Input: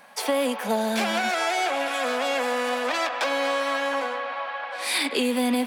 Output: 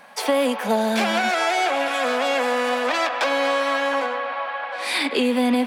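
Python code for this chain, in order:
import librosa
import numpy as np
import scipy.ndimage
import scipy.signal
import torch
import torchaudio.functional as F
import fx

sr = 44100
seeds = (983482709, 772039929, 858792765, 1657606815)

y = fx.high_shelf(x, sr, hz=6300.0, db=fx.steps((0.0, -5.5), (4.05, -12.0)))
y = y * librosa.db_to_amplitude(4.0)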